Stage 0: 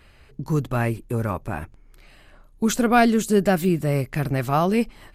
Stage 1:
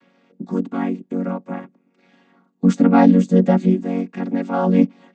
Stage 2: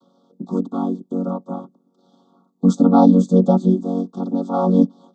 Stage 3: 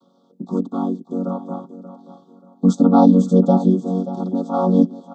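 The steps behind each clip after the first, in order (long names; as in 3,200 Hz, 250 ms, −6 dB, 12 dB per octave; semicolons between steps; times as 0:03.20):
channel vocoder with a chord as carrier major triad, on F#3; level +5 dB
Chebyshev band-stop filter 1,300–3,400 Hz, order 4; level +1 dB
repeating echo 582 ms, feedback 32%, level −13.5 dB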